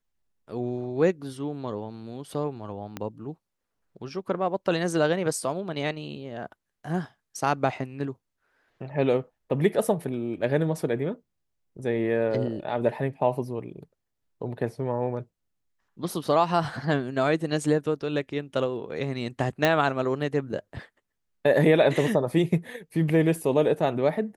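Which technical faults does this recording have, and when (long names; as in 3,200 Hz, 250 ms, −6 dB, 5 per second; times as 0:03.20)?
0:02.97: click −18 dBFS
0:19.65: click −8 dBFS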